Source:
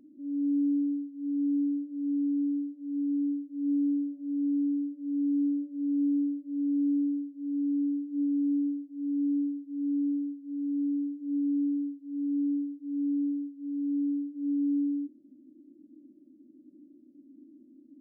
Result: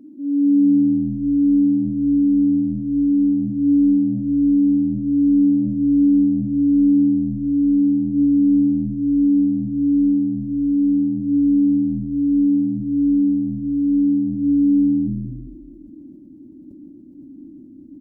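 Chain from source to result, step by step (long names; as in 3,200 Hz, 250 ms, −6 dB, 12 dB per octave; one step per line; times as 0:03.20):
parametric band 210 Hz +8.5 dB 2.8 octaves
echo with shifted repeats 203 ms, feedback 47%, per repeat −81 Hz, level −15 dB
level that may fall only so fast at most 35 dB per second
level +4.5 dB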